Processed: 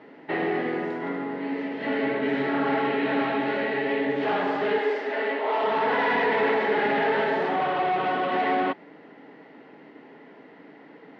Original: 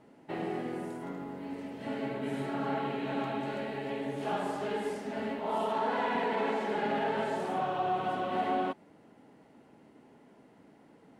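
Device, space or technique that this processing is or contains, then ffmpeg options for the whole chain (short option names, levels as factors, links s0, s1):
overdrive pedal into a guitar cabinet: -filter_complex "[0:a]asplit=2[s0][s1];[s1]highpass=f=720:p=1,volume=6.31,asoftclip=type=tanh:threshold=0.112[s2];[s0][s2]amix=inputs=2:normalize=0,lowpass=f=4800:p=1,volume=0.501,highpass=98,equalizer=f=160:t=q:w=4:g=6,equalizer=f=290:t=q:w=4:g=7,equalizer=f=440:t=q:w=4:g=6,equalizer=f=1900:t=q:w=4:g=8,lowpass=f=4400:w=0.5412,lowpass=f=4400:w=1.3066,asettb=1/sr,asplit=3[s3][s4][s5];[s3]atrim=end=4.784[s6];[s4]atrim=start=4.78:end=5.63,asetpts=PTS-STARTPTS,afade=t=in:d=0.004:c=qsin,afade=t=out:st=0.846:d=0.004:c=qsin,highpass=f=320:w=0.5412,highpass=f=320:w=1.3066[s7];[s5]atrim=start=5.626[s8];[s6][s7]acrossfade=d=0.004:c1=hsin:c2=qsin[s9];[s9][s8]acrossfade=d=0.004:c1=qsin:c2=hsin,volume=1.12"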